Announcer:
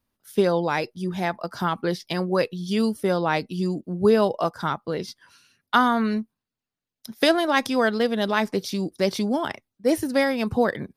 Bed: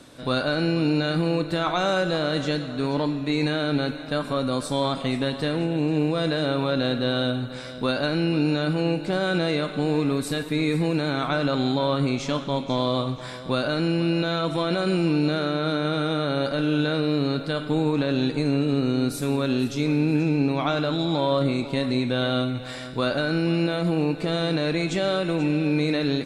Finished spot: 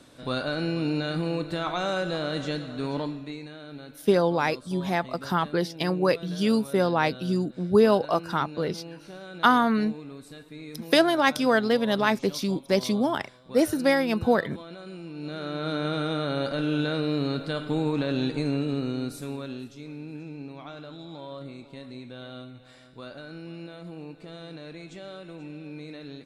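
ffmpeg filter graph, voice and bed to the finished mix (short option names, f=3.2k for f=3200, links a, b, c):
-filter_complex "[0:a]adelay=3700,volume=-0.5dB[a];[1:a]volume=9.5dB,afade=t=out:st=2.96:d=0.47:silence=0.223872,afade=t=in:st=15.14:d=0.67:silence=0.188365,afade=t=out:st=18.38:d=1.37:silence=0.199526[b];[a][b]amix=inputs=2:normalize=0"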